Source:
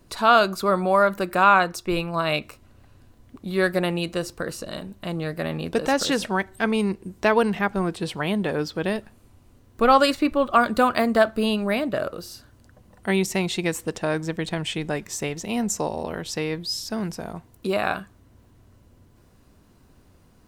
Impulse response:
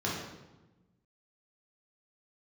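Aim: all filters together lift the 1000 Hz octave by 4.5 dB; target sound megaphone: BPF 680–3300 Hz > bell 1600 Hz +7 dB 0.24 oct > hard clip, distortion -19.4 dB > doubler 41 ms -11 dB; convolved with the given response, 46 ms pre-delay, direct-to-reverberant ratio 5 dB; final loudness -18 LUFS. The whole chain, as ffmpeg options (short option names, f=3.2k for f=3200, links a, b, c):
-filter_complex "[0:a]equalizer=f=1k:t=o:g=6.5,asplit=2[a][b];[1:a]atrim=start_sample=2205,adelay=46[c];[b][c]afir=irnorm=-1:irlink=0,volume=-13dB[d];[a][d]amix=inputs=2:normalize=0,highpass=680,lowpass=3.3k,equalizer=f=1.6k:t=o:w=0.24:g=7,asoftclip=type=hard:threshold=-4.5dB,asplit=2[e][f];[f]adelay=41,volume=-11dB[g];[e][g]amix=inputs=2:normalize=0,volume=2dB"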